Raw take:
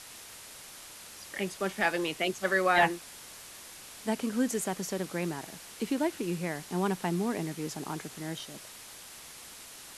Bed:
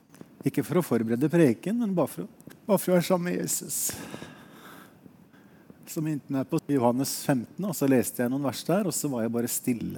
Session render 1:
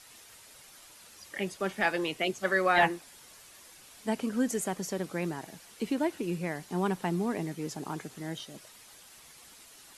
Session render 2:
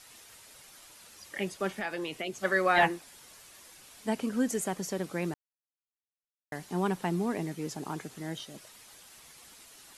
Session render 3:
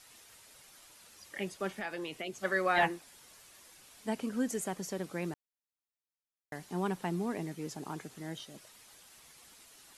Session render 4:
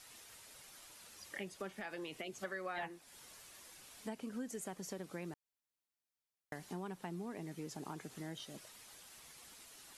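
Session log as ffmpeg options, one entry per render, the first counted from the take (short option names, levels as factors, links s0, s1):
-af "afftdn=nr=8:nf=-48"
-filter_complex "[0:a]asettb=1/sr,asplit=3[s0][s1][s2];[s0]atrim=end=1.754[s3];[s1]atrim=start=1.75:end=2.4,asetpts=PTS-STARTPTS,afade=t=in:d=0.004:c=qsin,afade=t=out:st=0.646:d=0.004:c=qsin,acompressor=threshold=0.0251:ratio=3:attack=3.2:release=140:knee=1:detection=peak[s4];[s2]atrim=start=2.396[s5];[s3][s4]acrossfade=d=0.004:c1=hsin:c2=qsin[s6];[s6][s5]acrossfade=d=0.004:c1=qsin:c2=hsin,asplit=3[s7][s8][s9];[s7]atrim=end=5.34,asetpts=PTS-STARTPTS,afade=t=out:st=5.336:d=0.004:c=hsin[s10];[s8]atrim=start=5.34:end=6.52,asetpts=PTS-STARTPTS,volume=0[s11];[s9]atrim=start=6.52,asetpts=PTS-STARTPTS,afade=t=in:d=0.004:c=hsin[s12];[s10][s11][s12]concat=n=3:v=0:a=1"
-af "volume=0.631"
-af "acompressor=threshold=0.00794:ratio=4"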